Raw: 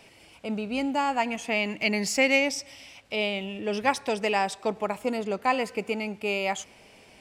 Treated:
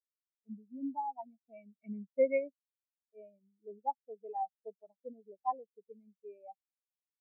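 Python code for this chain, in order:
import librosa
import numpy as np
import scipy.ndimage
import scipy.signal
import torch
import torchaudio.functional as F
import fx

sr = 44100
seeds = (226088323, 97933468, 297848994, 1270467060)

y = fx.lowpass(x, sr, hz=1900.0, slope=6)
y = fx.spectral_expand(y, sr, expansion=4.0)
y = F.gain(torch.from_numpy(y), -7.5).numpy()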